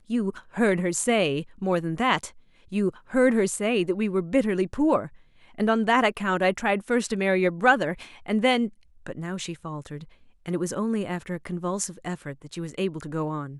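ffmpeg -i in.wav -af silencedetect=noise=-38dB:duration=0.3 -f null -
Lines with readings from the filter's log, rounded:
silence_start: 2.29
silence_end: 2.72 | silence_duration: 0.43
silence_start: 5.07
silence_end: 5.58 | silence_duration: 0.51
silence_start: 8.69
silence_end: 9.07 | silence_duration: 0.38
silence_start: 10.04
silence_end: 10.46 | silence_duration: 0.42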